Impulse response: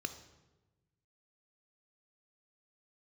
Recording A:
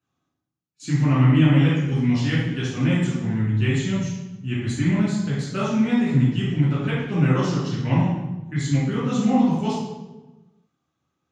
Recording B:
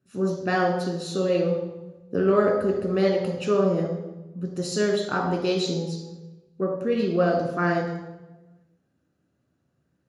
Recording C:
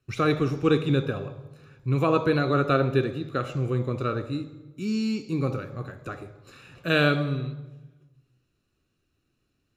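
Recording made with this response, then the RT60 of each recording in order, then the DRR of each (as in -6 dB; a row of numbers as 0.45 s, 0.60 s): C; 1.1 s, 1.1 s, 1.2 s; -8.5 dB, 0.5 dB, 9.0 dB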